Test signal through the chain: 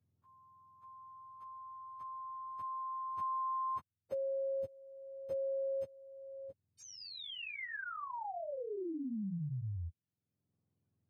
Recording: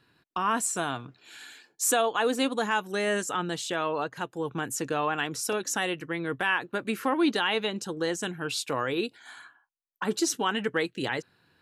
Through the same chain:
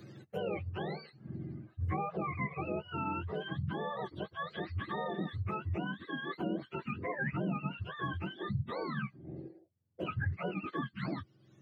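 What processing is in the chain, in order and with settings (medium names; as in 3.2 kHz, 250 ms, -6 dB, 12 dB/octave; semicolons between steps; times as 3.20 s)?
spectrum inverted on a logarithmic axis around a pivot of 740 Hz; three bands compressed up and down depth 70%; trim -8.5 dB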